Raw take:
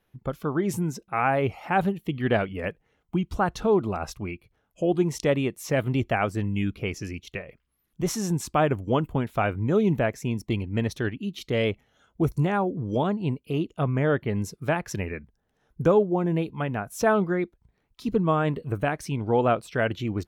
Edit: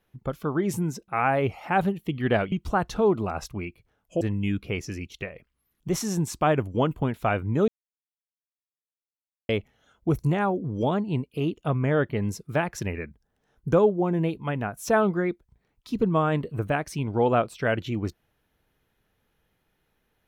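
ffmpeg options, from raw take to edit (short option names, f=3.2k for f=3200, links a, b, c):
-filter_complex "[0:a]asplit=5[a][b][c][d][e];[a]atrim=end=2.522[f];[b]atrim=start=3.178:end=4.872[g];[c]atrim=start=6.338:end=9.81,asetpts=PTS-STARTPTS,afade=t=out:st=3.468:d=0.004:c=hsin[h];[d]atrim=start=9.81:end=11.62,asetpts=PTS-STARTPTS,volume=0[i];[e]atrim=start=11.62,asetpts=PTS-STARTPTS,afade=t=in:d=0.004:c=hsin[j];[f][g]acrossfade=d=0.004:c1=hsin:c2=hsin[k];[h][i][j]concat=n=3:v=0:a=1[l];[k][l]acrossfade=d=0.004:c1=hsin:c2=hsin"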